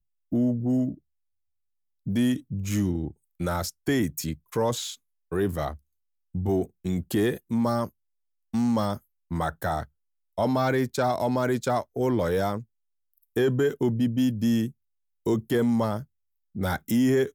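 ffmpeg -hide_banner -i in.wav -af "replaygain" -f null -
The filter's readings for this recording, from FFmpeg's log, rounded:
track_gain = +7.1 dB
track_peak = 0.157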